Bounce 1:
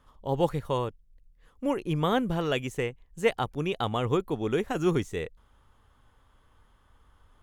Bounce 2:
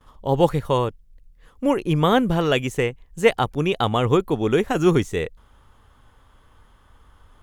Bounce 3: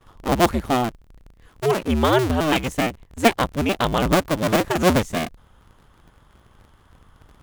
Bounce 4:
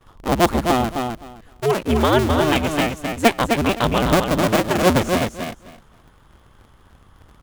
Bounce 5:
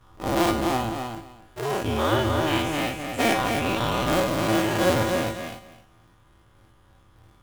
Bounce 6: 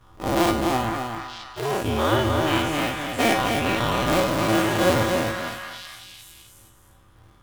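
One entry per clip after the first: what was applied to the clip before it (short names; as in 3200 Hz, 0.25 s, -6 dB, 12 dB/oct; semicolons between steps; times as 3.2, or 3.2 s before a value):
gate with hold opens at -58 dBFS; gain +8 dB
cycle switcher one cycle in 2, inverted
feedback echo 0.258 s, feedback 17%, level -5 dB; gain +1 dB
spectral dilation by 0.12 s; resonator 110 Hz, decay 0.42 s, harmonics odd, mix 80%
delay with a stepping band-pass 0.462 s, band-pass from 1500 Hz, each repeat 1.4 oct, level -4 dB; gain +1.5 dB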